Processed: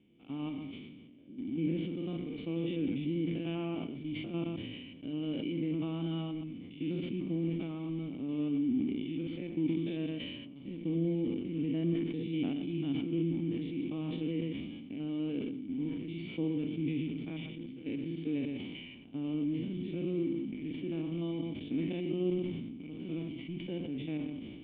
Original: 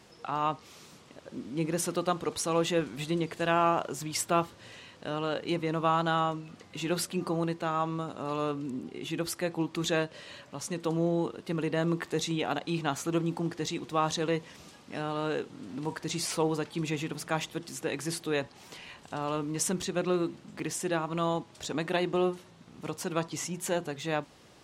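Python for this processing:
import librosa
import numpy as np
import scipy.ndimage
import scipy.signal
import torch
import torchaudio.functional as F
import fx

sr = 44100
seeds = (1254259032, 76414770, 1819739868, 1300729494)

p1 = fx.spec_steps(x, sr, hold_ms=100)
p2 = fx.quant_dither(p1, sr, seeds[0], bits=6, dither='none')
p3 = p1 + F.gain(torch.from_numpy(p2), -3.5).numpy()
p4 = fx.formant_cascade(p3, sr, vowel='i')
p5 = p4 + fx.echo_single(p4, sr, ms=122, db=-12.5, dry=0)
p6 = fx.sustainer(p5, sr, db_per_s=32.0)
y = F.gain(torch.from_numpy(p6), 2.5).numpy()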